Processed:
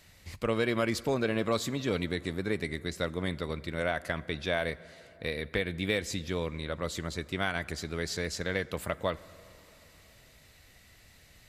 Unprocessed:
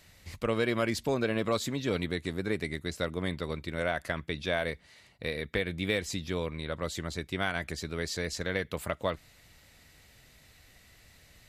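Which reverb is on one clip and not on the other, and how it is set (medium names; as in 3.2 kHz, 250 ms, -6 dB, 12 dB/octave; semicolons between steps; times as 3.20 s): plate-style reverb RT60 3.6 s, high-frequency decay 0.45×, DRR 18 dB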